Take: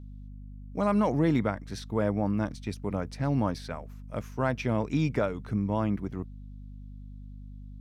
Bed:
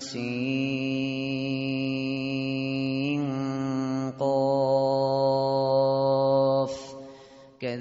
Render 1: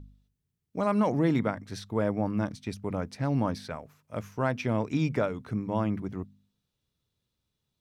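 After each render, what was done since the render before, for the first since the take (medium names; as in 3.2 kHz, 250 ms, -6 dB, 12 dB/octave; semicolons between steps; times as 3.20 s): de-hum 50 Hz, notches 5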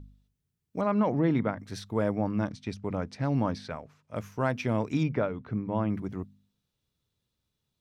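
0.81–1.59 s: distance through air 200 m; 2.15–4.16 s: low-pass 6.4 kHz; 5.03–5.90 s: distance through air 240 m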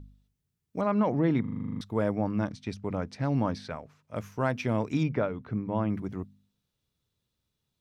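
1.41 s: stutter in place 0.04 s, 10 plays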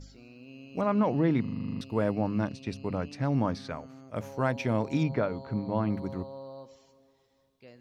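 add bed -21 dB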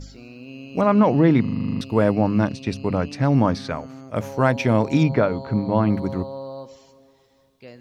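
trim +9.5 dB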